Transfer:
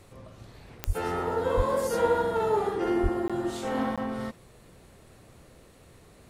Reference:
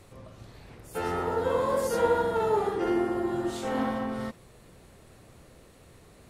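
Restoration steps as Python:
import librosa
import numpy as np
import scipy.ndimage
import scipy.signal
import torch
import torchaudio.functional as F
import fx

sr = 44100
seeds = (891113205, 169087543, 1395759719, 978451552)

y = fx.fix_declick_ar(x, sr, threshold=10.0)
y = fx.highpass(y, sr, hz=140.0, slope=24, at=(0.86, 0.98), fade=0.02)
y = fx.highpass(y, sr, hz=140.0, slope=24, at=(1.56, 1.68), fade=0.02)
y = fx.highpass(y, sr, hz=140.0, slope=24, at=(3.02, 3.14), fade=0.02)
y = fx.fix_interpolate(y, sr, at_s=(3.28, 3.96), length_ms=16.0)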